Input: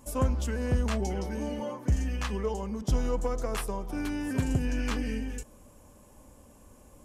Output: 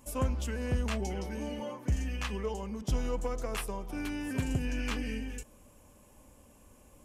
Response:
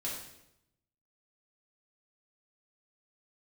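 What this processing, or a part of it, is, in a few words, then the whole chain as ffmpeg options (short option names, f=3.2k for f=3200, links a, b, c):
presence and air boost: -af "equalizer=f=2.6k:t=o:w=0.83:g=5.5,highshelf=f=9.7k:g=4,volume=-4dB"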